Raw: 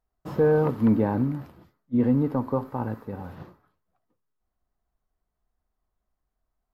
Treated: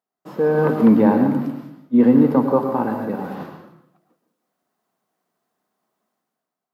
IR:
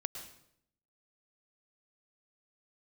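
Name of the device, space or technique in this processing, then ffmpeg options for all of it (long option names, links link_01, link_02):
far laptop microphone: -filter_complex "[1:a]atrim=start_sample=2205[link_01];[0:a][link_01]afir=irnorm=-1:irlink=0,highpass=frequency=180:width=0.5412,highpass=frequency=180:width=1.3066,dynaudnorm=framelen=130:gausssize=9:maxgain=12dB"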